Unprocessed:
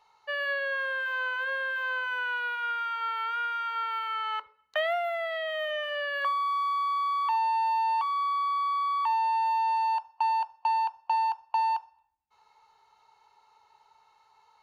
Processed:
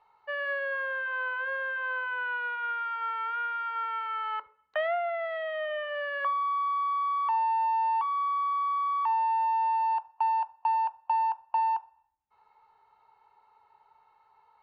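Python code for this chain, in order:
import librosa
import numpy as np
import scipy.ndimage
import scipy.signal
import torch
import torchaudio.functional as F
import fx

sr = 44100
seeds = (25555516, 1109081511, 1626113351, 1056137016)

y = scipy.signal.sosfilt(scipy.signal.butter(2, 2000.0, 'lowpass', fs=sr, output='sos'), x)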